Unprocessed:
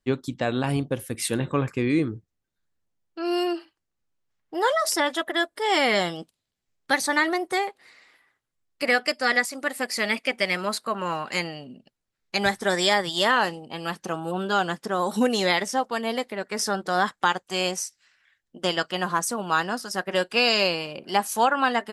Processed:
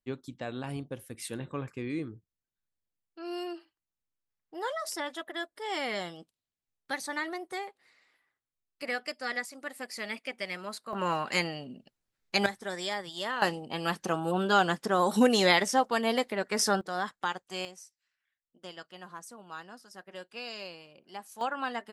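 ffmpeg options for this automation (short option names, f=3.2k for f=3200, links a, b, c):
-af "asetnsamples=n=441:p=0,asendcmd='10.93 volume volume -1.5dB;12.46 volume volume -13dB;13.42 volume volume -0.5dB;16.81 volume volume -10dB;17.65 volume volume -20dB;21.41 volume volume -11.5dB',volume=-12dB"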